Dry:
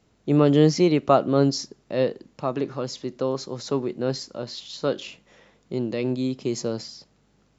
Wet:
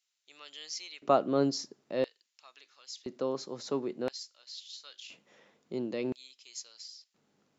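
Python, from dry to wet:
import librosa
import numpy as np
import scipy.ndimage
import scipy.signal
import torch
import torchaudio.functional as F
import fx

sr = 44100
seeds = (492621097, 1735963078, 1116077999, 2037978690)

y = fx.filter_lfo_highpass(x, sr, shape='square', hz=0.49, low_hz=200.0, high_hz=3200.0, q=0.75)
y = y * librosa.db_to_amplitude(-7.0)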